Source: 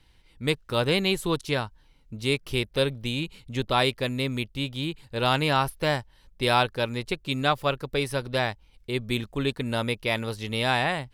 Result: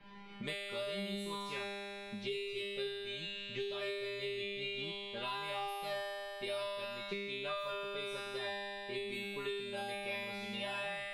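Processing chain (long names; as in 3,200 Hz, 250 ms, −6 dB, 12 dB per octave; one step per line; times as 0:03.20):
low-pass that shuts in the quiet parts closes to 1,900 Hz, open at −21.5 dBFS
0:02.15–0:04.78: graphic EQ with 15 bands 250 Hz −9 dB, 1,000 Hz −11 dB, 10,000 Hz −7 dB
speech leveller 0.5 s
tuned comb filter 200 Hz, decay 1.4 s, mix 100%
multiband upward and downward compressor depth 100%
level +6 dB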